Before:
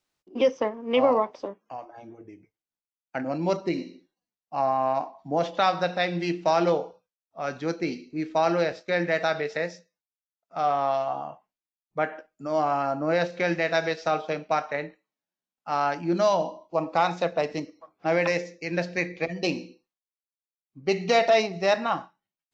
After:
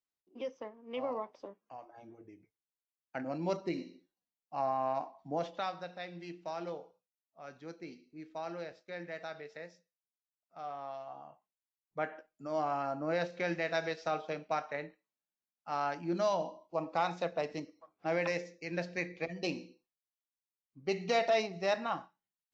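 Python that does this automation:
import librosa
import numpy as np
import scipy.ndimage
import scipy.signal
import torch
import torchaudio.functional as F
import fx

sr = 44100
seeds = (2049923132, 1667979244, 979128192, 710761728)

y = fx.gain(x, sr, db=fx.line((0.8, -18.0), (2.04, -8.5), (5.3, -8.5), (5.85, -18.0), (11.01, -18.0), (12.05, -9.0)))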